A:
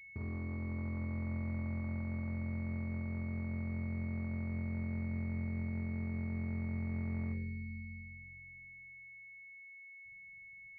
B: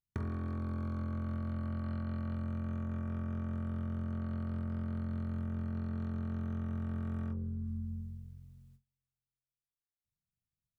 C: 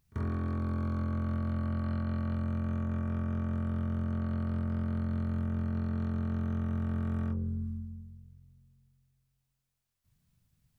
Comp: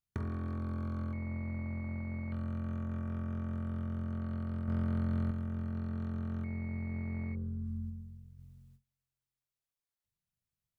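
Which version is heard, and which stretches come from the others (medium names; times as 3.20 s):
B
1.13–2.32 s: from A
4.68–5.31 s: from C
6.44–7.35 s: from A
7.90–8.39 s: from C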